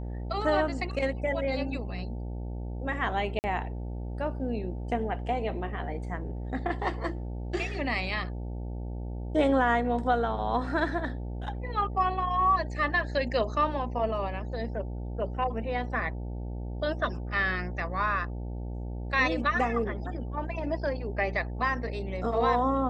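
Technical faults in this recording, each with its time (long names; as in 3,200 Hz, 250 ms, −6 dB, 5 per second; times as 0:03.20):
mains buzz 60 Hz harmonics 15 −35 dBFS
0:03.39–0:03.44: drop-out 49 ms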